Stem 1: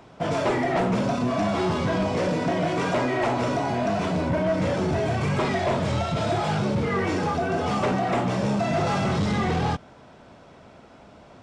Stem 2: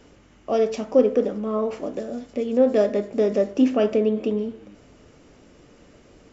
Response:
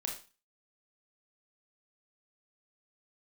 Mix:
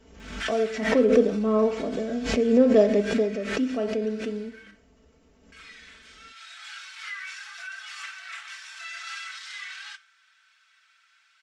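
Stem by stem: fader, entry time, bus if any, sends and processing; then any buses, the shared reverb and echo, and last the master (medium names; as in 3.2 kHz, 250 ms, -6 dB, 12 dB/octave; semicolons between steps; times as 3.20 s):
-6.0 dB, 0.20 s, muted 4.71–5.52 s, send -14.5 dB, Chebyshev high-pass 1.5 kHz, order 4; auto duck -15 dB, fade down 1.80 s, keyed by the second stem
0.86 s -10 dB -> 1.20 s -3 dB -> 3.00 s -3 dB -> 3.37 s -13 dB, 0.00 s, send -17 dB, none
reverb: on, RT60 0.35 s, pre-delay 25 ms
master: peaking EQ 70 Hz +11.5 dB 0.62 oct; comb 4.5 ms, depth 69%; swell ahead of each attack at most 64 dB/s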